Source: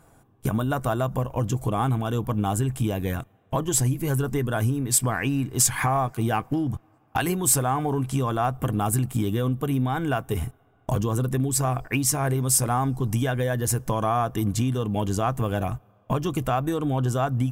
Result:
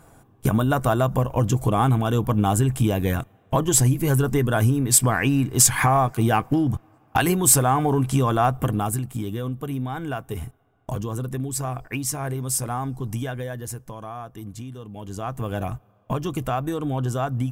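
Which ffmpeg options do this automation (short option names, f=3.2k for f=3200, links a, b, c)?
-af "volume=15.5dB,afade=t=out:st=8.5:d=0.52:silence=0.375837,afade=t=out:st=13.2:d=0.71:silence=0.398107,afade=t=in:st=14.99:d=0.63:silence=0.281838"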